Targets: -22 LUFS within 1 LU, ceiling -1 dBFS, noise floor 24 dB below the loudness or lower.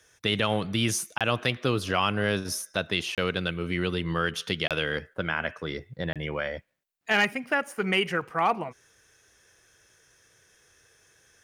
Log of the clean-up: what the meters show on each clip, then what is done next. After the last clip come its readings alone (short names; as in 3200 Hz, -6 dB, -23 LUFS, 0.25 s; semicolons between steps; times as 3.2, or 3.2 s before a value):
dropouts 4; longest dropout 27 ms; loudness -27.5 LUFS; peak -10.0 dBFS; loudness target -22.0 LUFS
-> interpolate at 1.18/3.15/4.68/6.13, 27 ms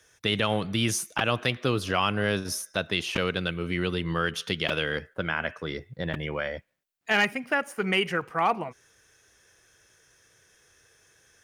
dropouts 0; loudness -27.5 LUFS; peak -10.0 dBFS; loudness target -22.0 LUFS
-> gain +5.5 dB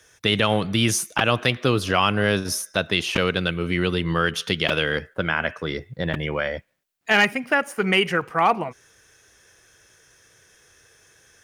loudness -22.0 LUFS; peak -4.5 dBFS; noise floor -57 dBFS